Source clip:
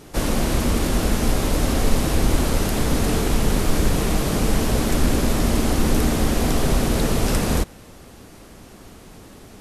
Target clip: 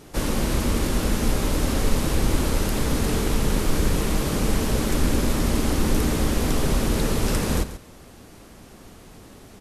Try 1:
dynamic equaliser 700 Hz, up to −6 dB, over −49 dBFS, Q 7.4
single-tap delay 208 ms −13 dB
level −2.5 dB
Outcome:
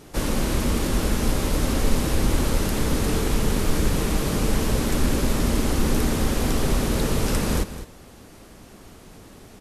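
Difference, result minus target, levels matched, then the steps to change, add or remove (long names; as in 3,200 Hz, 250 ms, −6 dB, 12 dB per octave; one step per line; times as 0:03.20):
echo 71 ms late
change: single-tap delay 137 ms −13 dB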